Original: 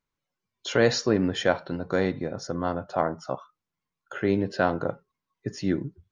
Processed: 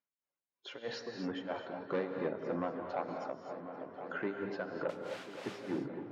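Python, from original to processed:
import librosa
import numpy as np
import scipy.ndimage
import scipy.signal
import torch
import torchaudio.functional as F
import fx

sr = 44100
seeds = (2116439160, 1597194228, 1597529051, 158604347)

y = fx.spec_quant(x, sr, step_db=15)
y = fx.rider(y, sr, range_db=10, speed_s=0.5)
y = fx.quant_dither(y, sr, seeds[0], bits=6, dither='triangular', at=(4.89, 5.66))
y = y * (1.0 - 0.97 / 2.0 + 0.97 / 2.0 * np.cos(2.0 * np.pi * 3.1 * (np.arange(len(y)) / sr)))
y = 10.0 ** (-24.0 / 20.0) * np.tanh(y / 10.0 ** (-24.0 / 20.0))
y = fx.bandpass_edges(y, sr, low_hz=240.0, high_hz=2800.0)
y = fx.echo_wet_lowpass(y, sr, ms=521, feedback_pct=72, hz=1800.0, wet_db=-12.0)
y = fx.rev_gated(y, sr, seeds[1], gate_ms=280, shape='rising', drr_db=5.0)
y = fx.band_squash(y, sr, depth_pct=70, at=(3.08, 4.2))
y = F.gain(torch.from_numpy(y), -2.5).numpy()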